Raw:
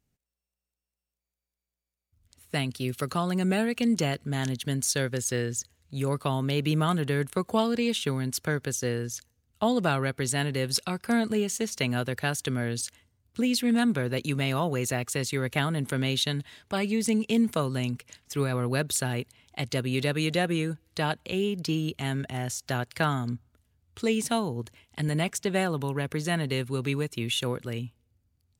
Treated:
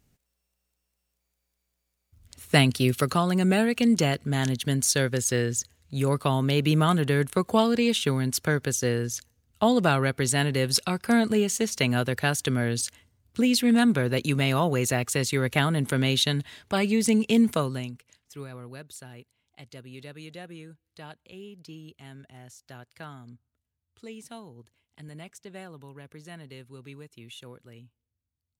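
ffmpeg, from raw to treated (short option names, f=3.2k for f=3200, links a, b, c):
-af "volume=10dB,afade=t=out:st=2.58:d=0.67:silence=0.473151,afade=t=out:st=17.48:d=0.44:silence=0.237137,afade=t=out:st=17.92:d=0.9:silence=0.446684"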